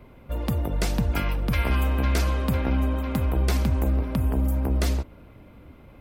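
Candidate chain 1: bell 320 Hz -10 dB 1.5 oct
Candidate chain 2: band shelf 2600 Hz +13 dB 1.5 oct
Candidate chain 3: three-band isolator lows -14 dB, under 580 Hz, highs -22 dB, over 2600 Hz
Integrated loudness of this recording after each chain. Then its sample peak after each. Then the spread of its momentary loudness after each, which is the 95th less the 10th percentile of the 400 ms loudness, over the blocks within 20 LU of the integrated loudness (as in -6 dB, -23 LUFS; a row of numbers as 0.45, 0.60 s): -27.0, -23.0, -35.5 LUFS; -12.5, -4.0, -17.0 dBFS; 5, 6, 6 LU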